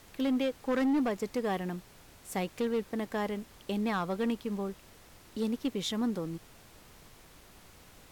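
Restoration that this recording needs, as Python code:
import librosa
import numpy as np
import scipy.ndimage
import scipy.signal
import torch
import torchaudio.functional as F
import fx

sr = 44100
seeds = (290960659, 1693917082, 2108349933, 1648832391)

y = fx.fix_declip(x, sr, threshold_db=-24.5)
y = fx.noise_reduce(y, sr, print_start_s=4.8, print_end_s=5.3, reduce_db=22.0)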